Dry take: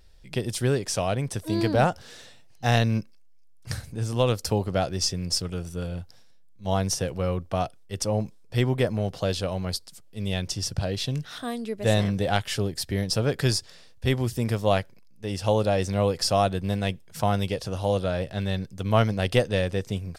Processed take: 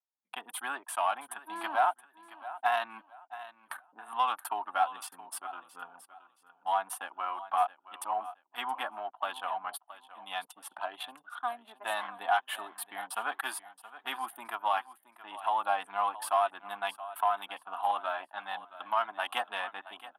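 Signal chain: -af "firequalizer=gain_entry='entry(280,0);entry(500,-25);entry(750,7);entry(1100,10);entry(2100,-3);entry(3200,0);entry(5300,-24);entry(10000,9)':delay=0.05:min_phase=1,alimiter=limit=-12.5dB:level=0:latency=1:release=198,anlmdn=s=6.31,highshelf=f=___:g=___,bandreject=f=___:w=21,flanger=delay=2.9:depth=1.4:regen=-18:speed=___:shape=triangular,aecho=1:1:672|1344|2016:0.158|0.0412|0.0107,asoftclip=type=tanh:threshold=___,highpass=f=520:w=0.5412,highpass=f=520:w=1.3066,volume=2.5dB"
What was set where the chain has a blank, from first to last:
6000, -10, 1900, 1.1, -16dB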